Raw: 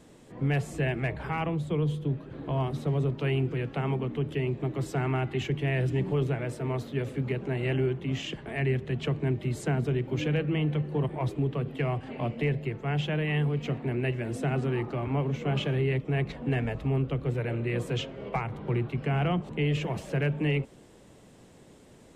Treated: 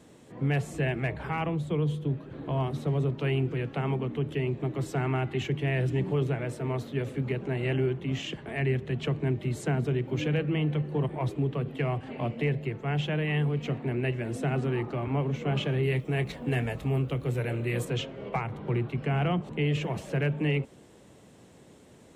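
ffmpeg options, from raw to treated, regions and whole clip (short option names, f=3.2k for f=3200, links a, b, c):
-filter_complex "[0:a]asettb=1/sr,asplit=3[a][b][c];[a]atrim=end=15.834[d];[b]atrim=start=15.83:end=17.85,asetpts=PTS-STARTPTS,afade=t=in:d=0.004:c=qsin,afade=t=out:st=2.016:d=0.004:c=qsin,aemphasis=mode=production:type=50fm,asplit=2[e][f];[f]adelay=24,volume=-13dB[g];[e][g]amix=inputs=2:normalize=0,atrim=end_sample=89082[h];[c]atrim=start=17.846[i];[d][h]acrossfade=d=0.004:c1=hsin:c2=qsin[j];[j][i]acrossfade=d=0.004:c1=qsin:c2=hsin,highpass=56,bandreject=f=4.9k:w=29"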